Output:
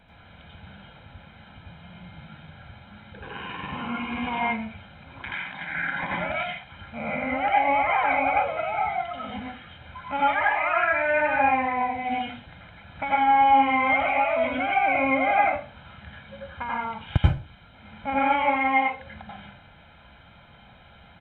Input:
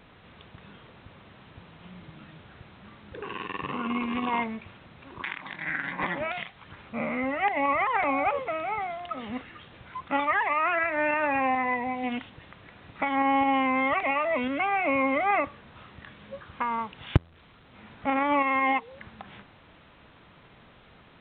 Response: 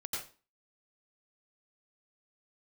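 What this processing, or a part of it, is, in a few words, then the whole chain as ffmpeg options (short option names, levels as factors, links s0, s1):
microphone above a desk: -filter_complex "[0:a]aecho=1:1:1.3:0.64[s0];[1:a]atrim=start_sample=2205[s1];[s0][s1]afir=irnorm=-1:irlink=0"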